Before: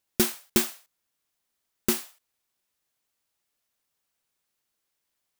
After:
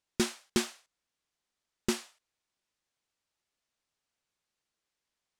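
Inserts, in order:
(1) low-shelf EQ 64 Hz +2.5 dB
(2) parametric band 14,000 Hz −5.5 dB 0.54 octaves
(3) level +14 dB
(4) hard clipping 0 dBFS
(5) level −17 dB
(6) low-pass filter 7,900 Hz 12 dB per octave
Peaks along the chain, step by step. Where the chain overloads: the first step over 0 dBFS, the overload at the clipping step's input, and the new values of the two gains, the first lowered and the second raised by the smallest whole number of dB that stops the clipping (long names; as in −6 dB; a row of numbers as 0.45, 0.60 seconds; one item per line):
−6.5, −6.5, +7.5, 0.0, −17.0, −16.5 dBFS
step 3, 7.5 dB
step 3 +6 dB, step 5 −9 dB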